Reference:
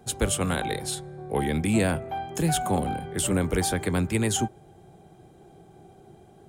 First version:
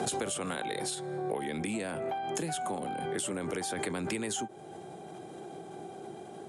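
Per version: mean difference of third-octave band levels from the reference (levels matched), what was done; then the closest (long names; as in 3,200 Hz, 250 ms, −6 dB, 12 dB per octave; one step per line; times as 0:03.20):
8.0 dB: high-pass filter 240 Hz 12 dB per octave
downward compressor 8 to 1, threshold −41 dBFS, peak gain reduction 19.5 dB
Butterworth low-pass 11,000 Hz 48 dB per octave
background raised ahead of every attack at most 22 dB per second
level +8 dB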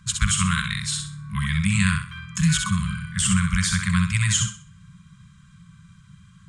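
13.0 dB: Chebyshev low-pass filter 7,900 Hz, order 3
on a send: feedback echo with a high-pass in the loop 64 ms, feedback 32%, level −4.5 dB
on the sum: brick-wall band-stop 210–1,000 Hz
level +6.5 dB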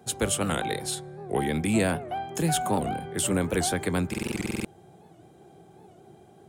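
2.5 dB: high-pass filter 60 Hz
low-shelf EQ 80 Hz −8 dB
buffer that repeats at 0:04.09, samples 2,048, times 11
wow of a warped record 78 rpm, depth 160 cents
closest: third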